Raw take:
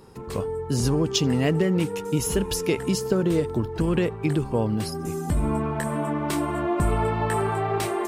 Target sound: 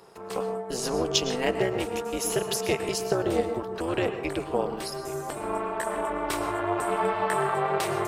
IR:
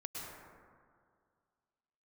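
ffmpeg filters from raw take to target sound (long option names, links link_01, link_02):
-filter_complex "[0:a]highpass=frequency=370:width=0.5412,highpass=frequency=370:width=1.3066,tremolo=f=250:d=0.824,asplit=2[link_01][link_02];[1:a]atrim=start_sample=2205,afade=type=out:start_time=0.23:duration=0.01,atrim=end_sample=10584,highshelf=frequency=9000:gain=-9[link_03];[link_02][link_03]afir=irnorm=-1:irlink=0,volume=0.5dB[link_04];[link_01][link_04]amix=inputs=2:normalize=0"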